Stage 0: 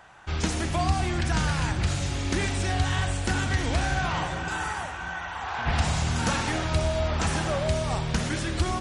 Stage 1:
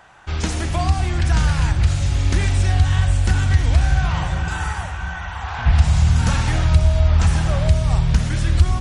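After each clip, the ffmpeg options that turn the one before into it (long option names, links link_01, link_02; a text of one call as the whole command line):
ffmpeg -i in.wav -filter_complex "[0:a]asubboost=boost=6.5:cutoff=120,asplit=2[link_01][link_02];[link_02]alimiter=limit=-11dB:level=0:latency=1:release=454,volume=3dB[link_03];[link_01][link_03]amix=inputs=2:normalize=0,volume=-4.5dB" out.wav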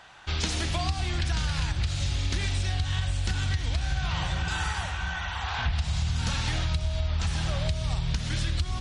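ffmpeg -i in.wav -af "equalizer=frequency=3900:width=0.91:gain=10.5,acompressor=threshold=-19dB:ratio=6,volume=-5dB" out.wav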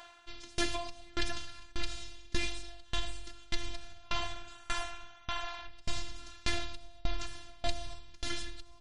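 ffmpeg -i in.wav -af "afftfilt=real='hypot(re,im)*cos(PI*b)':imag='0':win_size=512:overlap=0.75,aeval=exprs='val(0)*pow(10,-29*if(lt(mod(1.7*n/s,1),2*abs(1.7)/1000),1-mod(1.7*n/s,1)/(2*abs(1.7)/1000),(mod(1.7*n/s,1)-2*abs(1.7)/1000)/(1-2*abs(1.7)/1000))/20)':channel_layout=same,volume=5dB" out.wav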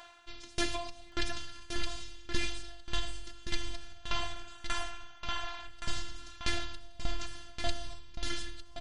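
ffmpeg -i in.wav -af "aecho=1:1:1121:0.398" out.wav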